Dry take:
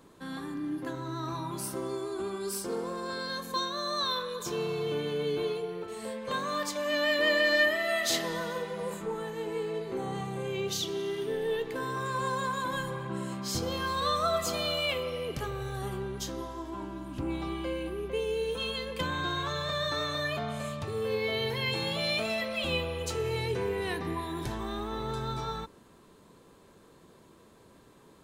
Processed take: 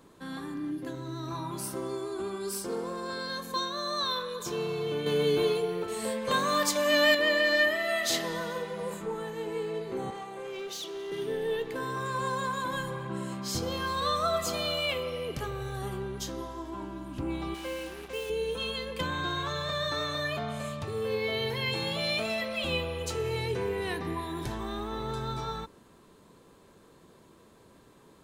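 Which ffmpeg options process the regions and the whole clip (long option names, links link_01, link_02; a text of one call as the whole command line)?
ffmpeg -i in.wav -filter_complex "[0:a]asettb=1/sr,asplit=3[link_01][link_02][link_03];[link_01]atrim=end=0.714[link_04];[link_02]atrim=start=0.71:end=1.31,asetpts=PTS-STARTPTS,afade=type=in:duration=0.004:curve=qsin,afade=type=out:start_time=0.596:duration=0.004:curve=qsin,equalizer=frequency=1200:width_type=o:width=1.3:gain=-6.5,bandreject=frequency=850:width=8.7[link_05];[link_03]atrim=start=1.306[link_06];[link_04][link_05]acrossfade=duration=0.004:curve1=hsin:curve2=qsin[link_07];[link_07][link_06]acrossfade=duration=0.004:curve1=qsin:curve2=hsin,asettb=1/sr,asplit=3[link_08][link_09][link_10];[link_08]atrim=end=5.064[link_11];[link_09]atrim=start=5.06:end=7.15,asetpts=PTS-STARTPTS,afade=type=in:duration=0.004:curve=qsin,afade=type=out:start_time=2.086:duration=0.004:curve=qsin,highshelf=frequency=5900:gain=6,acontrast=27[link_12];[link_10]atrim=start=7.146[link_13];[link_11][link_12]acrossfade=duration=0.004:curve1=hsin:curve2=qsin[link_14];[link_14][link_13]acrossfade=duration=0.004:curve1=qsin:curve2=hsin,asettb=1/sr,asplit=3[link_15][link_16][link_17];[link_15]atrim=end=10.104[link_18];[link_16]atrim=start=10.1:end=11.12,asetpts=PTS-STARTPTS,afade=type=in:duration=0.004:curve=qsin,afade=type=out:start_time=1.016:duration=0.004:curve=qsin,highpass=420,highshelf=frequency=2600:gain=-5.5,volume=34dB,asoftclip=hard,volume=-34dB[link_19];[link_17]atrim=start=11.116[link_20];[link_18][link_19]acrossfade=duration=0.004:curve1=hsin:curve2=qsin[link_21];[link_21][link_20]acrossfade=duration=0.004:curve1=qsin:curve2=hsin,asettb=1/sr,asplit=3[link_22][link_23][link_24];[link_22]atrim=end=17.544[link_25];[link_23]atrim=start=17.54:end=18.3,asetpts=PTS-STARTPTS,afade=type=in:duration=0.004:curve=qsin,afade=type=out:start_time=0.756:duration=0.004:curve=qsin,lowshelf=frequency=440:gain=-9.5,aecho=1:1:3.8:0.41,atrim=end_sample=33516,acrusher=bits=6:mix=0:aa=0.5[link_26];[link_24]atrim=start=18.296[link_27];[link_25][link_26]acrossfade=duration=0.004:curve1=hsin:curve2=qsin[link_28];[link_28][link_27]acrossfade=duration=0.004:curve1=qsin:curve2=hsin" out.wav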